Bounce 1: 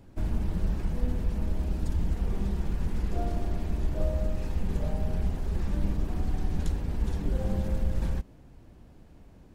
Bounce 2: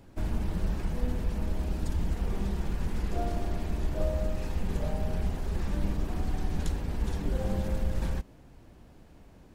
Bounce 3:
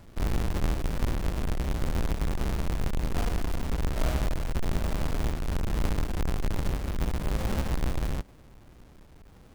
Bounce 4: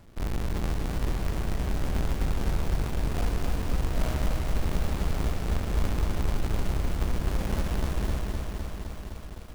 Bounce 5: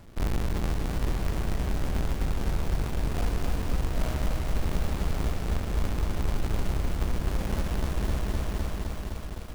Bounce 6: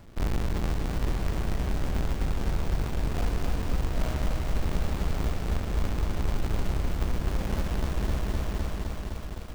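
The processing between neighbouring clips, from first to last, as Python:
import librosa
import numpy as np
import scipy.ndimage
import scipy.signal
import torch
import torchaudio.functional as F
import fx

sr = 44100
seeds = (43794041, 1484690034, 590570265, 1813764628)

y1 = fx.low_shelf(x, sr, hz=380.0, db=-5.0)
y1 = y1 * 10.0 ** (3.0 / 20.0)
y2 = fx.halfwave_hold(y1, sr)
y2 = fx.rider(y2, sr, range_db=10, speed_s=2.0)
y2 = y2 * 10.0 ** (-3.0 / 20.0)
y3 = fx.echo_feedback(y2, sr, ms=325, feedback_pct=55, wet_db=-21.0)
y3 = fx.echo_crushed(y3, sr, ms=256, feedback_pct=80, bits=8, wet_db=-4.0)
y3 = y3 * 10.0 ** (-2.5 / 20.0)
y4 = fx.rider(y3, sr, range_db=4, speed_s=0.5)
y5 = np.repeat(scipy.signal.resample_poly(y4, 1, 2), 2)[:len(y4)]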